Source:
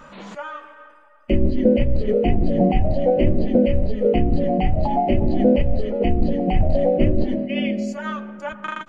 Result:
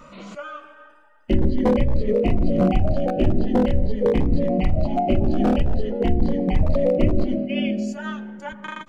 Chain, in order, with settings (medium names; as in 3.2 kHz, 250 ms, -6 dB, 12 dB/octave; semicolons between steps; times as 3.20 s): one-sided wavefolder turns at -11.5 dBFS; Shepard-style phaser rising 0.43 Hz